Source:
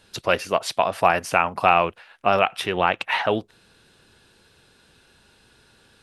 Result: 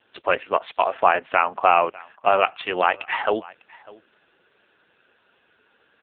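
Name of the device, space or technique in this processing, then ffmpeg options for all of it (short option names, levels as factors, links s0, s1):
satellite phone: -filter_complex "[0:a]asettb=1/sr,asplit=3[s0][s1][s2];[s0]atrim=end=1.454[s3];[s1]atrim=start=1.45:end=1.86,asetpts=PTS-STARTPTS,afade=t=in:d=0.004:c=qsin,afade=t=out:st=0.406:d=0.004:c=qsin,aemphasis=mode=reproduction:type=50kf[s4];[s2]atrim=start=1.856[s5];[s3][s4]acrossfade=d=0.004:c1=hsin:c2=qsin[s6];[s6][s5]acrossfade=d=0.004:c1=qsin:c2=hsin,highpass=340,lowpass=3300,aecho=1:1:600:0.075,volume=1.33" -ar 8000 -c:a libopencore_amrnb -b:a 5900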